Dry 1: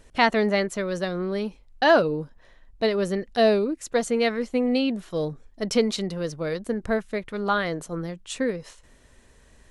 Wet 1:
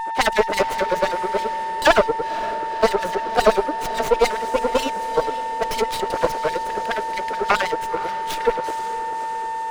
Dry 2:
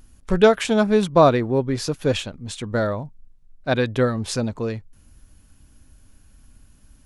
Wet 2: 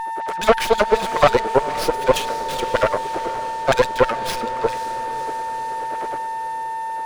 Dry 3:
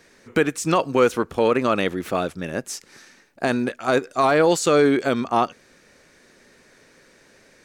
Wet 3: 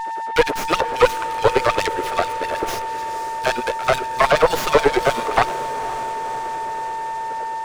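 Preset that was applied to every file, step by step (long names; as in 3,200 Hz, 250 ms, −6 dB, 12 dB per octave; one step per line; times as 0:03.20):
wind on the microphone 380 Hz −36 dBFS
high-shelf EQ 8,400 Hz +9.5 dB
notch filter 4,200 Hz, Q 22
in parallel at −2 dB: brickwall limiter −13.5 dBFS
on the sum: auto-filter high-pass sine 9.4 Hz 420–5,300 Hz
steady tone 900 Hz −22 dBFS
tube saturation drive 9 dB, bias 0.8
linear-phase brick-wall low-pass 13,000 Hz
on a send: feedback delay with all-pass diffusion 518 ms, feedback 67%, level −15 dB
on the sum: windowed peak hold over 5 samples
level +3.5 dB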